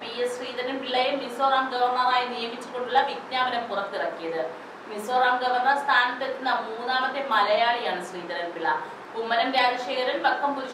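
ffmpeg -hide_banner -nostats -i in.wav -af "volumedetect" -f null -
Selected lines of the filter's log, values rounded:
mean_volume: -25.6 dB
max_volume: -9.1 dB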